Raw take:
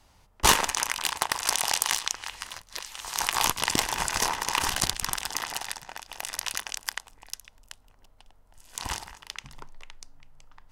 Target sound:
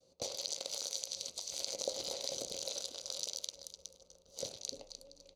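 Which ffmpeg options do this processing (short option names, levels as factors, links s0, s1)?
-filter_complex "[0:a]bandreject=f=51.23:t=h:w=4,bandreject=f=102.46:t=h:w=4,bandreject=f=153.69:t=h:w=4,bandreject=f=204.92:t=h:w=4,bandreject=f=256.15:t=h:w=4,bandreject=f=307.38:t=h:w=4,bandreject=f=358.61:t=h:w=4,bandreject=f=409.84:t=h:w=4,bandreject=f=461.07:t=h:w=4,bandreject=f=512.3:t=h:w=4,bandreject=f=563.53:t=h:w=4,bandreject=f=614.76:t=h:w=4,bandreject=f=665.99:t=h:w=4,bandreject=f=717.22:t=h:w=4,bandreject=f=768.45:t=h:w=4,bandreject=f=819.68:t=h:w=4,bandreject=f=870.91:t=h:w=4,bandreject=f=922.14:t=h:w=4,bandreject=f=973.37:t=h:w=4,bandreject=f=1024.6:t=h:w=4,bandreject=f=1075.83:t=h:w=4,bandreject=f=1127.06:t=h:w=4,bandreject=f=1178.29:t=h:w=4,bandreject=f=1229.52:t=h:w=4,bandreject=f=1280.75:t=h:w=4,bandreject=f=1331.98:t=h:w=4,bandreject=f=1383.21:t=h:w=4,bandreject=f=1434.44:t=h:w=4,agate=range=0.0224:threshold=0.002:ratio=3:detection=peak,lowpass=3900,lowshelf=f=190:g=6,acompressor=threshold=0.0224:ratio=16,asplit=3[s0][s1][s2];[s0]bandpass=f=270:t=q:w=8,volume=1[s3];[s1]bandpass=f=2290:t=q:w=8,volume=0.501[s4];[s2]bandpass=f=3010:t=q:w=8,volume=0.355[s5];[s3][s4][s5]amix=inputs=3:normalize=0,asplit=2[s6][s7];[s7]aecho=0:1:517|1034|1551:0.141|0.0537|0.0204[s8];[s6][s8]amix=inputs=2:normalize=0,asetrate=88200,aresample=44100,volume=5.01"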